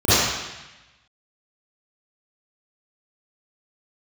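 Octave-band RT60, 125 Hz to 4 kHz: 1.2 s, 1.0 s, 0.95 s, 1.1 s, 1.2 s, 1.1 s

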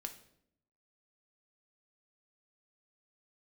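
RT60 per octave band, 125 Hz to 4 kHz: 1.0 s, 1.0 s, 0.80 s, 0.60 s, 0.60 s, 0.55 s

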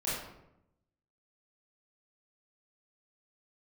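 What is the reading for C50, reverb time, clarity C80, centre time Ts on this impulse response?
0.0 dB, 0.85 s, 3.5 dB, 68 ms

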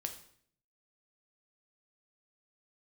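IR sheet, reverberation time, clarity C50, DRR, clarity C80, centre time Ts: 0.60 s, 10.5 dB, 5.0 dB, 13.5 dB, 12 ms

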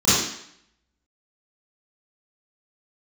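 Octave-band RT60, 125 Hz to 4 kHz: 0.55 s, 0.70 s, 0.65 s, 0.70 s, 0.75 s, 0.70 s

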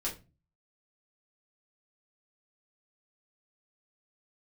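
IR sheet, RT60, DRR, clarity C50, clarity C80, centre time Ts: 0.30 s, -6.0 dB, 11.5 dB, 18.0 dB, 20 ms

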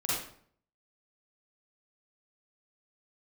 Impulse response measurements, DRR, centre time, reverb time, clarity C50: -8.5 dB, 69 ms, 0.55 s, -3.0 dB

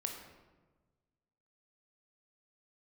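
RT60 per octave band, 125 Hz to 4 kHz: 1.8 s, 1.6 s, 1.4 s, 1.2 s, 0.95 s, 0.75 s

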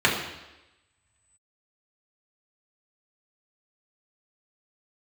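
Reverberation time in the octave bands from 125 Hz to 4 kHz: 1.1 s, 1.0 s, 1.0 s, 1.0 s, 1.0 s, 1.0 s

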